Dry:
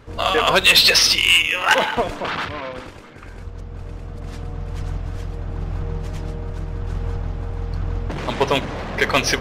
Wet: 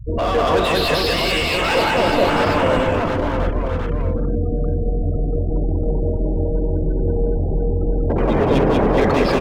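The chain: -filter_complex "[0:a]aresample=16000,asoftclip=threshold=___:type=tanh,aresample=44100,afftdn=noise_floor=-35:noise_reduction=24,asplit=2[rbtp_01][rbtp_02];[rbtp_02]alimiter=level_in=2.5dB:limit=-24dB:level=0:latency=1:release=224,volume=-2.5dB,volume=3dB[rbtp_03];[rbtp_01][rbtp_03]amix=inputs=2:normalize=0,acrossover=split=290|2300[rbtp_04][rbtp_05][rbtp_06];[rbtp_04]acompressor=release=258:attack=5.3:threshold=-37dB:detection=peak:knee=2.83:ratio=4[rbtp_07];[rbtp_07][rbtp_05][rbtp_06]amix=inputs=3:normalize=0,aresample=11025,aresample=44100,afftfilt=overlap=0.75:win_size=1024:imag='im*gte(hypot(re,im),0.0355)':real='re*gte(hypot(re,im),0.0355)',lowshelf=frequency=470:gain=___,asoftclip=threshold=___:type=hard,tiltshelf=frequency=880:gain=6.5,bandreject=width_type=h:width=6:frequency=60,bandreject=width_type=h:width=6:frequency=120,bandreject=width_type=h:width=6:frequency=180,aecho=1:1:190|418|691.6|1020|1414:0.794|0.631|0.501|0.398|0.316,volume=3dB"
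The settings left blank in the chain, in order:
-21.5dB, 5, -20.5dB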